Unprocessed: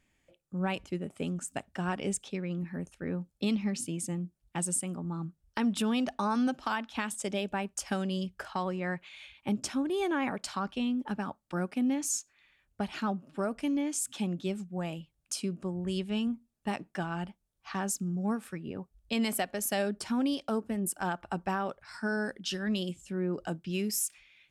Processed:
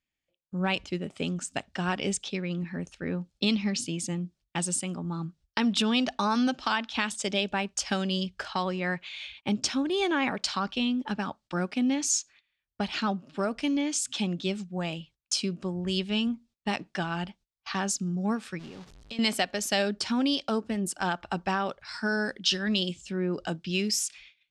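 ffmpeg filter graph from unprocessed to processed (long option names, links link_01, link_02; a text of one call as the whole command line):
ffmpeg -i in.wav -filter_complex "[0:a]asettb=1/sr,asplit=3[link_01][link_02][link_03];[link_01]atrim=end=18.594[link_04];[link_02]atrim=start=18.59:end=19.19,asetpts=PTS-STARTPTS,afade=type=in:duration=0.004:curve=qsin,afade=type=out:start_time=0.596:duration=0.004:curve=qsin,aeval=exprs='val(0)+0.5*0.0126*sgn(val(0))':channel_layout=same,agate=range=-11dB:threshold=-39dB:ratio=16:release=100:detection=peak,acompressor=threshold=-43dB:ratio=8:attack=3.2:release=140:knee=1:detection=peak[link_05];[link_03]atrim=start=19.186[link_06];[link_04][link_05]acrossfade=duration=0.004:curve1=hsin:curve2=qsin[link_07];[link_07][link_06]acrossfade=duration=0.004:curve1=qsin:curve2=hsin,agate=range=-21dB:threshold=-57dB:ratio=16:detection=peak,lowpass=6800,equalizer=frequency=4300:width=0.69:gain=10,volume=2.5dB" out.wav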